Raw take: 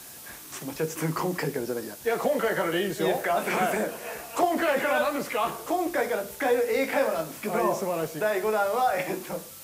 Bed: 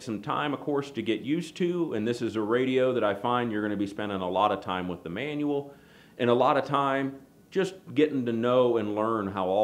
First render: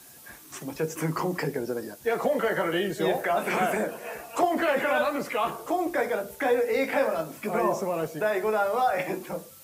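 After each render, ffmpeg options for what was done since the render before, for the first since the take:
-af "afftdn=nr=7:nf=-44"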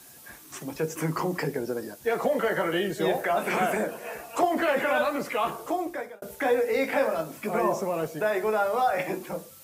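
-filter_complex "[0:a]asplit=2[a][b];[a]atrim=end=6.22,asetpts=PTS-STARTPTS,afade=t=out:st=5.66:d=0.56[c];[b]atrim=start=6.22,asetpts=PTS-STARTPTS,afade=t=in:d=0.004:c=hsin[d];[c][d]concat=n=2:v=0:a=1"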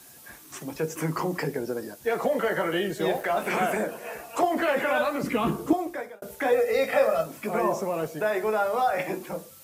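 -filter_complex "[0:a]asettb=1/sr,asplit=3[a][b][c];[a]atrim=end=2.984[d];[b]atrim=start=2.98:end=3.46,asetpts=PTS-STARTPTS,afade=t=in:d=0.004:c=qsin,afade=t=out:st=0.476:d=0.004:c=qsin,aeval=exprs='sgn(val(0))*max(abs(val(0))-0.00473,0)':c=same[e];[c]atrim=start=3.456[f];[d][e]acrossfade=d=0.004:c1=hsin:c2=qsin[g];[g][f]acrossfade=d=0.004:c1=qsin:c2=hsin,asettb=1/sr,asplit=3[h][i][j];[h]atrim=end=5.234[k];[i]atrim=start=5.23:end=5.73,asetpts=PTS-STARTPTS,afade=t=in:d=0.004:c=qsin,afade=t=out:st=0.496:d=0.004:c=qsin,lowshelf=f=410:t=q:w=1.5:g=13[l];[j]atrim=start=5.726[m];[k][l]acrossfade=d=0.004:c1=hsin:c2=qsin[n];[n][m]acrossfade=d=0.004:c1=qsin:c2=hsin,asettb=1/sr,asplit=3[o][p][q];[o]atrim=end=6.524[r];[p]atrim=start=6.52:end=7.26,asetpts=PTS-STARTPTS,afade=t=in:d=0.004:c=qsin,afade=t=out:st=0.736:d=0.004:c=qsin,aecho=1:1:1.6:0.69,atrim=end_sample=32634[s];[q]atrim=start=7.256[t];[r][s]acrossfade=d=0.004:c1=hsin:c2=qsin[u];[u][t]acrossfade=d=0.004:c1=qsin:c2=hsin"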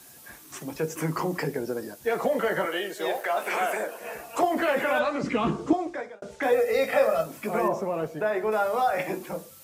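-filter_complex "[0:a]asettb=1/sr,asplit=3[a][b][c];[a]atrim=end=2.654[d];[b]atrim=start=2.65:end=4.01,asetpts=PTS-STARTPTS,afade=t=in:d=0.004:c=qsin,afade=t=out:st=1.356:d=0.004:c=qsin,highpass=450[e];[c]atrim=start=4.006[f];[d][e]acrossfade=d=0.004:c1=hsin:c2=qsin[g];[g][f]acrossfade=d=0.004:c1=qsin:c2=hsin,asettb=1/sr,asplit=3[h][i][j];[h]atrim=end=4.994[k];[i]atrim=start=4.99:end=6.43,asetpts=PTS-STARTPTS,afade=t=in:d=0.004:c=qsin,afade=t=out:st=1.436:d=0.004:c=qsin,lowpass=f=7.3k:w=0.5412,lowpass=f=7.3k:w=1.3066[l];[j]atrim=start=6.426[m];[k][l]acrossfade=d=0.004:c1=hsin:c2=qsin[n];[n][m]acrossfade=d=0.004:c1=qsin:c2=hsin,asettb=1/sr,asplit=3[o][p][q];[o]atrim=end=7.684[r];[p]atrim=start=7.68:end=8.52,asetpts=PTS-STARTPTS,afade=t=in:d=0.004:c=qsin,afade=t=out:st=0.836:d=0.004:c=qsin,highshelf=f=4k:g=-11[s];[q]atrim=start=8.516[t];[r][s]acrossfade=d=0.004:c1=hsin:c2=qsin[u];[u][t]acrossfade=d=0.004:c1=qsin:c2=hsin"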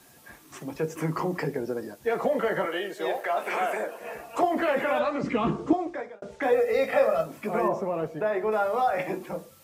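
-af "highshelf=f=4.1k:g=-8.5,bandreject=f=1.5k:w=27"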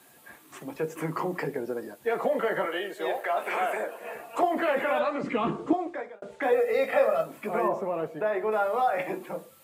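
-af "highpass=f=250:p=1,equalizer=f=5.6k:t=o:w=0.57:g=-7.5"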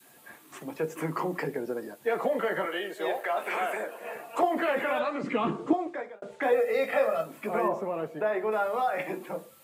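-af "highpass=100,adynamicequalizer=threshold=0.02:dfrequency=680:dqfactor=0.84:tfrequency=680:tqfactor=0.84:attack=5:release=100:ratio=0.375:range=2:mode=cutabove:tftype=bell"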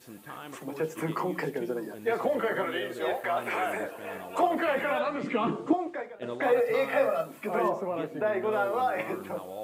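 -filter_complex "[1:a]volume=-14.5dB[a];[0:a][a]amix=inputs=2:normalize=0"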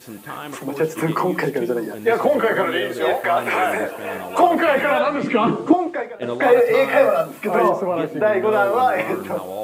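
-af "volume=10.5dB"

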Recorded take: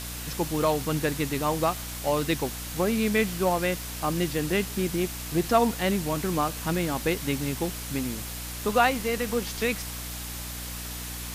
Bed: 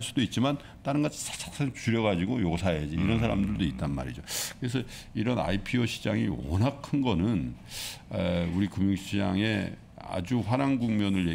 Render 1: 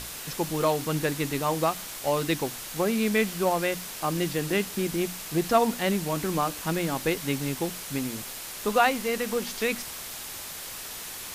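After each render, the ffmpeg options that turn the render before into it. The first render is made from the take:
-af "bandreject=f=60:t=h:w=6,bandreject=f=120:t=h:w=6,bandreject=f=180:t=h:w=6,bandreject=f=240:t=h:w=6,bandreject=f=300:t=h:w=6"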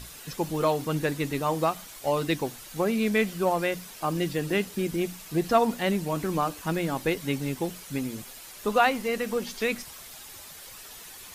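-af "afftdn=nr=9:nf=-39"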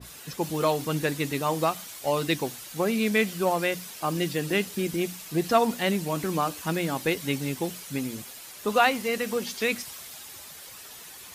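-af "highpass=67,adynamicequalizer=threshold=0.0112:dfrequency=2000:dqfactor=0.7:tfrequency=2000:tqfactor=0.7:attack=5:release=100:ratio=0.375:range=2:mode=boostabove:tftype=highshelf"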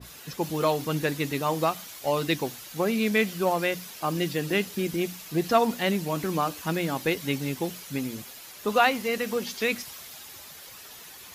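-af "equalizer=f=8.7k:w=3:g=-6"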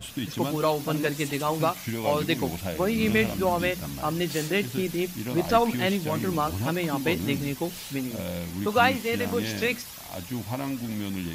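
-filter_complex "[1:a]volume=-5dB[a];[0:a][a]amix=inputs=2:normalize=0"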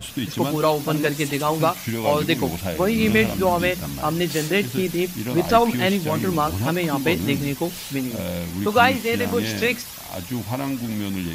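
-af "volume=5dB,alimiter=limit=-3dB:level=0:latency=1"

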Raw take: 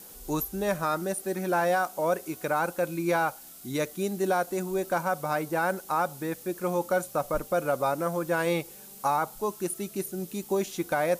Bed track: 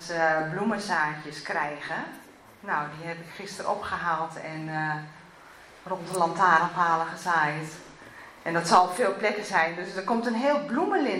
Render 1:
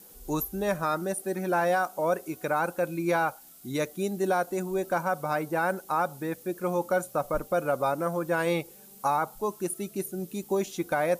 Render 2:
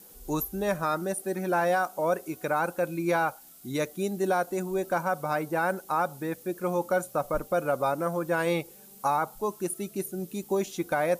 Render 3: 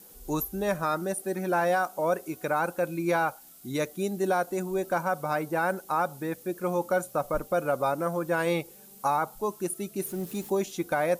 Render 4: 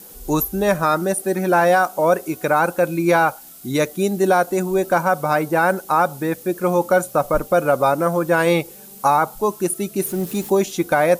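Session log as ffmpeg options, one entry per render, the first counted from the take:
-af "afftdn=nr=6:nf=-47"
-af anull
-filter_complex "[0:a]asettb=1/sr,asplit=3[a][b][c];[a]atrim=end=10.024[d];[b]atrim=start=10.02:end=10.5,asetpts=PTS-STARTPTS,afade=t=in:d=0.004:c=qsin,afade=t=out:st=0.476:d=0.004:c=qsin,aeval=exprs='val(0)+0.5*0.00794*sgn(val(0))':c=same[e];[c]atrim=start=10.496[f];[d][e]acrossfade=d=0.004:c1=hsin:c2=qsin[g];[g][f]acrossfade=d=0.004:c1=qsin:c2=hsin"
-af "volume=10dB"

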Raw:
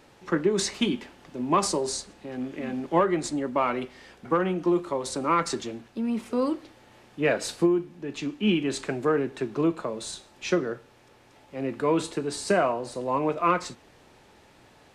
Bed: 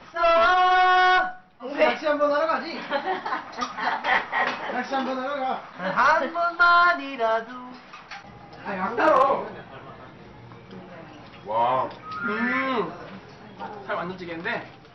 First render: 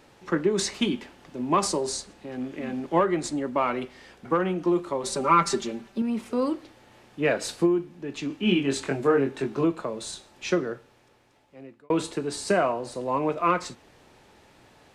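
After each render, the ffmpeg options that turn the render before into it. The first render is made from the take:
-filter_complex "[0:a]asettb=1/sr,asplit=3[a][b][c];[a]atrim=end=5.034[d];[b]atrim=start=5.03:end=6.02,asetpts=PTS-STARTPTS,afade=t=in:d=0.004:c=qsin,afade=t=out:st=0.986:d=0.004:c=qsin,aecho=1:1:5.1:0.97,atrim=end_sample=43659[e];[c]atrim=start=6.016[f];[d][e]acrossfade=d=0.004:c1=hsin:c2=qsin[g];[g][f]acrossfade=d=0.004:c1=qsin:c2=hsin,asettb=1/sr,asplit=3[h][i][j];[h]atrim=end=8.284[k];[i]atrim=start=8.28:end=9.65,asetpts=PTS-STARTPTS,afade=t=in:d=0.004:c=qsin,afade=t=out:st=1.366:d=0.004:c=qsin,asplit=2[l][m];[m]adelay=22,volume=-3dB[n];[l][n]amix=inputs=2:normalize=0,atrim=end_sample=60417[o];[j]atrim=start=9.646[p];[k][o]acrossfade=d=0.004:c1=hsin:c2=qsin[q];[q][p]acrossfade=d=0.004:c1=qsin:c2=hsin,asplit=2[r][s];[r]atrim=end=11.9,asetpts=PTS-STARTPTS,afade=t=out:st=10.6:d=1.3[t];[s]atrim=start=11.9,asetpts=PTS-STARTPTS,afade=t=in:d=0.004:c=hsin[u];[t][u]concat=n=2:v=0:a=1"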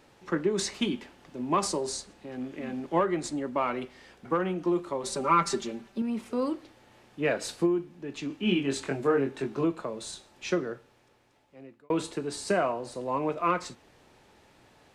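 -af "volume=-3.5dB"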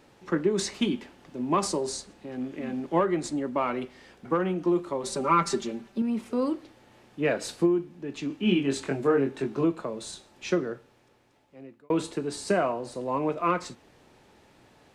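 -af "equalizer=f=230:t=o:w=2.3:g=3"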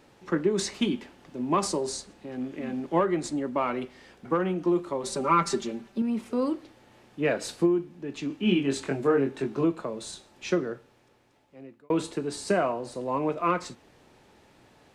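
-af anull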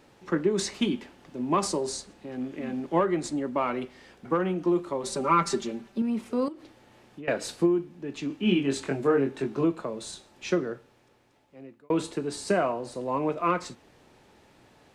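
-filter_complex "[0:a]asettb=1/sr,asplit=3[a][b][c];[a]atrim=end=6.484[d];[b]atrim=start=6.48:end=7.28,asetpts=PTS-STARTPTS,afade=t=in:d=0.004:c=qsin,afade=t=out:st=0.796:d=0.004:c=qsin,acompressor=threshold=-37dB:ratio=10:attack=3.2:release=140:knee=1:detection=peak[e];[c]atrim=start=7.276[f];[d][e]acrossfade=d=0.004:c1=hsin:c2=qsin[g];[g][f]acrossfade=d=0.004:c1=qsin:c2=hsin"

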